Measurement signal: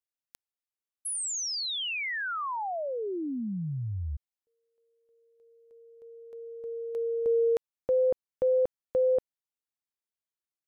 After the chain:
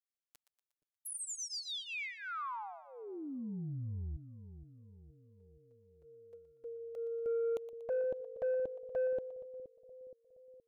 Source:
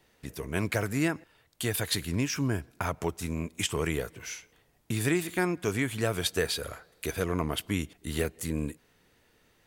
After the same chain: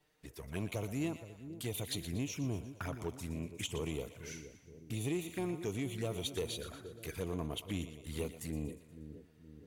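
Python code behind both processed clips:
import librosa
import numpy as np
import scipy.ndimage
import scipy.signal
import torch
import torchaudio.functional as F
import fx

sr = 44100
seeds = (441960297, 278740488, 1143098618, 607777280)

y = fx.env_flanger(x, sr, rest_ms=6.9, full_db=-27.0)
y = fx.echo_split(y, sr, split_hz=540.0, low_ms=471, high_ms=119, feedback_pct=52, wet_db=-12.5)
y = 10.0 ** (-21.0 / 20.0) * np.tanh(y / 10.0 ** (-21.0 / 20.0))
y = y * librosa.db_to_amplitude(-6.5)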